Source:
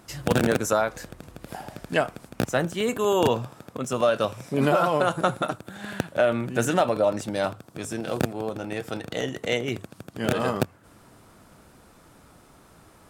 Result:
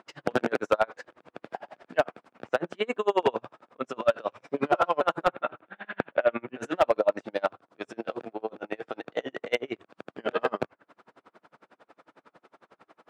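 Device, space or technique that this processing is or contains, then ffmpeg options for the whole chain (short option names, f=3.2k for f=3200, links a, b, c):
helicopter radio: -filter_complex "[0:a]highpass=370,lowpass=2.6k,aeval=exprs='val(0)*pow(10,-35*(0.5-0.5*cos(2*PI*11*n/s))/20)':c=same,asoftclip=type=hard:threshold=-18.5dB,asettb=1/sr,asplit=3[a][b][c];[a]atrim=end=5.284[d];[b]atrim=start=5.28:end=6.58,asetpts=PTS-STARTPTS,afade=t=in:d=0.004:c=qsin,afade=t=out:st=1.296:d=0.004:c=qsin,highshelf=f=4k:t=q:w=1.5:g=-13[e];[c]atrim=start=6.576[f];[d][e]acrossfade=d=0.004:c1=hsin:c2=qsin[g];[g][f]acrossfade=d=0.004:c1=qsin:c2=hsin,volume=5.5dB"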